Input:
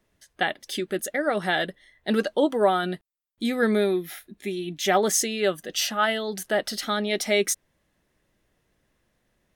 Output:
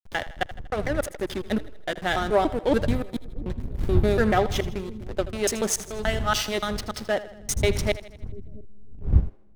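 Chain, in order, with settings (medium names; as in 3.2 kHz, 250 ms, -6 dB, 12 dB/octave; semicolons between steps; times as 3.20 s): slices played last to first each 144 ms, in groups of 5; wind noise 90 Hz -29 dBFS; hysteresis with a dead band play -24 dBFS; on a send: two-band feedback delay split 370 Hz, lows 688 ms, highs 80 ms, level -15.5 dB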